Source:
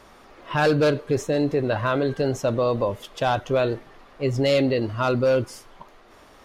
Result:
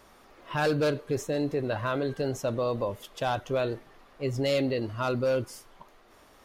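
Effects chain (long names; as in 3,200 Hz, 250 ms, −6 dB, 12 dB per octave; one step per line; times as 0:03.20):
high-shelf EQ 9,900 Hz +10 dB
level −6.5 dB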